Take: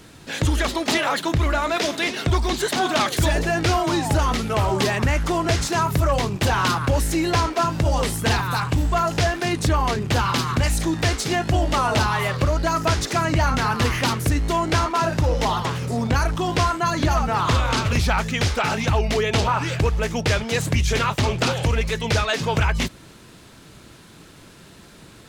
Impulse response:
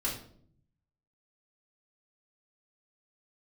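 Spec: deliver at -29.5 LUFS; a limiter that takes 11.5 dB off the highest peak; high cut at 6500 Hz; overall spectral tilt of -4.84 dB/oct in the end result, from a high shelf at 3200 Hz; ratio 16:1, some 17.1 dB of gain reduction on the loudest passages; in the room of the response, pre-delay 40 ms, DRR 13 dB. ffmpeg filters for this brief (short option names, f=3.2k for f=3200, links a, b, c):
-filter_complex "[0:a]lowpass=6.5k,highshelf=f=3.2k:g=-5,acompressor=threshold=-33dB:ratio=16,alimiter=level_in=8dB:limit=-24dB:level=0:latency=1,volume=-8dB,asplit=2[a][b];[1:a]atrim=start_sample=2205,adelay=40[c];[b][c]afir=irnorm=-1:irlink=0,volume=-18dB[d];[a][d]amix=inputs=2:normalize=0,volume=10.5dB"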